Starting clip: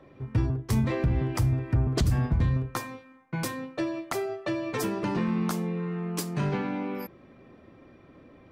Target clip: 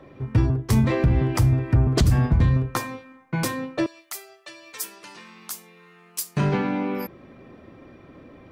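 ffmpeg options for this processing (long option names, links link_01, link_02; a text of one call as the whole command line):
ffmpeg -i in.wav -filter_complex "[0:a]asettb=1/sr,asplit=3[link_01][link_02][link_03];[link_01]atrim=end=3.864[link_04];[link_02]atrim=start=3.86:end=6.37,asetpts=PTS-STARTPTS,afade=type=in:duration=0.004:curve=qsin,afade=type=out:start_time=2.506:duration=0.004:curve=qsin,aderivative[link_05];[link_03]atrim=start=6.366[link_06];[link_04][link_05]acrossfade=duration=0.004:curve1=hsin:curve2=qsin[link_07];[link_07][link_06]acrossfade=duration=0.004:curve1=qsin:curve2=hsin,volume=6dB" out.wav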